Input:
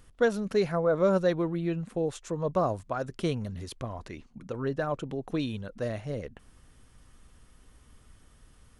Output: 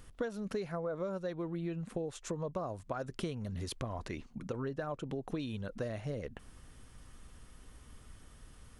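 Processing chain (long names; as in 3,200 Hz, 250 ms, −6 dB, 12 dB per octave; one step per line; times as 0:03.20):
downward compressor 10 to 1, threshold −36 dBFS, peak gain reduction 17.5 dB
level +2 dB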